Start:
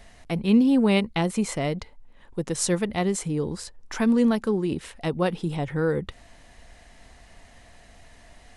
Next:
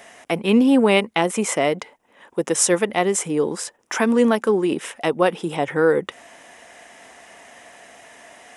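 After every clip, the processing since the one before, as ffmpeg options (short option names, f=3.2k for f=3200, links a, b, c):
-filter_complex "[0:a]highpass=350,equalizer=f=4.3k:w=4.1:g=-12,asplit=2[a][b];[b]alimiter=limit=-18dB:level=0:latency=1:release=398,volume=-1.5dB[c];[a][c]amix=inputs=2:normalize=0,volume=5dB"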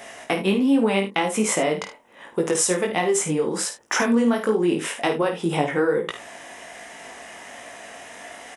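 -af "acompressor=threshold=-23dB:ratio=6,flanger=delay=17.5:depth=4.4:speed=1.3,aecho=1:1:51|76:0.355|0.178,volume=7.5dB"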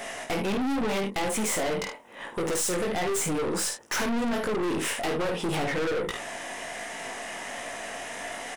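-af "aeval=exprs='(tanh(35.5*val(0)+0.3)-tanh(0.3))/35.5':c=same,volume=5dB"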